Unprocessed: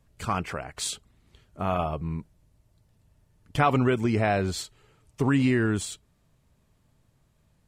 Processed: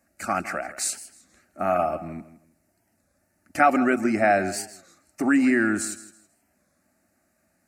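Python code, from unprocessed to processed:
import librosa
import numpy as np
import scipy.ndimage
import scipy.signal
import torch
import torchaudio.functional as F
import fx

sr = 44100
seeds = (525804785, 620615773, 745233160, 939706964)

y = scipy.signal.sosfilt(scipy.signal.butter(2, 120.0, 'highpass', fs=sr, output='sos'), x)
y = fx.low_shelf(y, sr, hz=230.0, db=-7.5)
y = fx.fixed_phaser(y, sr, hz=670.0, stages=8)
y = fx.echo_feedback(y, sr, ms=162, feedback_pct=25, wet_db=-15.0)
y = fx.record_warp(y, sr, rpm=33.33, depth_cents=160.0)
y = y * 10.0 ** (7.5 / 20.0)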